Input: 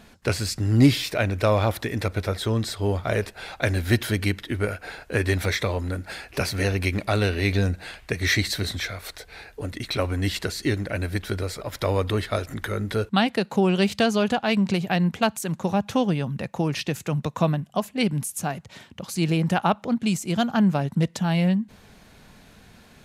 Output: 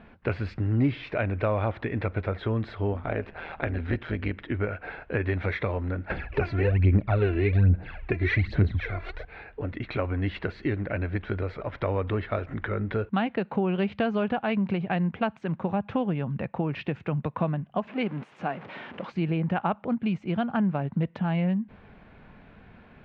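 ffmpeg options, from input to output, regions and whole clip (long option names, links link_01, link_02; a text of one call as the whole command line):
ffmpeg -i in.wav -filter_complex "[0:a]asettb=1/sr,asplit=3[link_01][link_02][link_03];[link_01]atrim=end=2.934[link_04];[link_02]atrim=start=2.93:end=4.41,asetpts=PTS-STARTPTS,afade=type=in:duration=0.004:curve=qsin,afade=type=out:start_time=1.476:duration=0.004:curve=qsin,acompressor=mode=upward:threshold=-26dB:ratio=2.5:attack=3.2:release=140:knee=2.83:detection=peak,tremolo=f=160:d=0.75[link_05];[link_03]atrim=start=4.406[link_06];[link_04][link_05]acrossfade=duration=0.004:curve1=hsin:curve2=qsin[link_07];[link_07][link_06]acrossfade=duration=0.004:curve1=qsin:curve2=hsin,asettb=1/sr,asplit=3[link_08][link_09][link_10];[link_08]atrim=end=6.104[link_11];[link_09]atrim=start=6.1:end=9.25,asetpts=PTS-STARTPTS,afade=type=in:duration=0.004:curve=qsin,afade=type=out:start_time=3.146:duration=0.004:curve=qsin,lowshelf=frequency=280:gain=9,aphaser=in_gain=1:out_gain=1:delay=3:decay=0.68:speed=1.2:type=sinusoidal[link_12];[link_10]atrim=start=9.246[link_13];[link_11][link_12]acrossfade=duration=0.004:curve1=hsin:curve2=qsin[link_14];[link_14][link_13]acrossfade=duration=0.004:curve1=qsin:curve2=hsin,asettb=1/sr,asplit=3[link_15][link_16][link_17];[link_15]atrim=end=17.874[link_18];[link_16]atrim=start=17.87:end=19.12,asetpts=PTS-STARTPTS,afade=type=in:duration=0.004:curve=qsin,afade=type=out:start_time=1.246:duration=0.004:curve=qsin,aeval=exprs='val(0)+0.5*0.02*sgn(val(0))':channel_layout=same,deesser=0.4,highpass=240[link_19];[link_17]atrim=start=19.116[link_20];[link_18][link_19]acrossfade=duration=0.004:curve1=hsin:curve2=qsin[link_21];[link_21][link_20]acrossfade=duration=0.004:curve1=qsin:curve2=hsin,lowpass=frequency=2500:width=0.5412,lowpass=frequency=2500:width=1.3066,equalizer=frequency=1900:width_type=o:width=0.24:gain=-2.5,acompressor=threshold=-26dB:ratio=2" out.wav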